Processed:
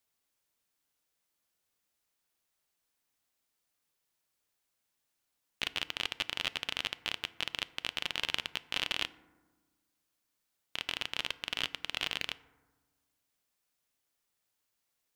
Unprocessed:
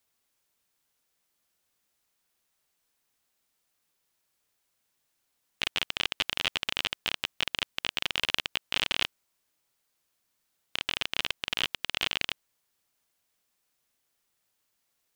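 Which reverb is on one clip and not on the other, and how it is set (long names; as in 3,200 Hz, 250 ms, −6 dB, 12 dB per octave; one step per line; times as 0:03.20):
feedback delay network reverb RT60 1.3 s, low-frequency decay 1.35×, high-frequency decay 0.35×, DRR 15 dB
level −5 dB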